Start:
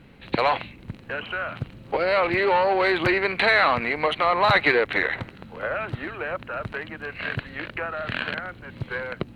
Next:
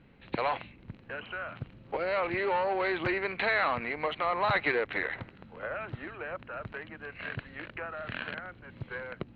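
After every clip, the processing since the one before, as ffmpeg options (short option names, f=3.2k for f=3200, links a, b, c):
-af "lowpass=3.5k,volume=-8.5dB"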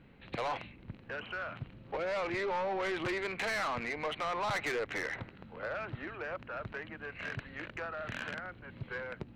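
-af "asoftclip=type=tanh:threshold=-30dB"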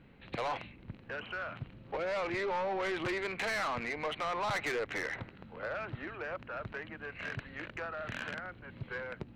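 -af anull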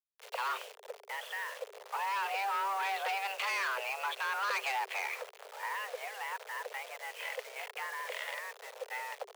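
-af "acrusher=bits=7:mix=0:aa=0.000001,afreqshift=390"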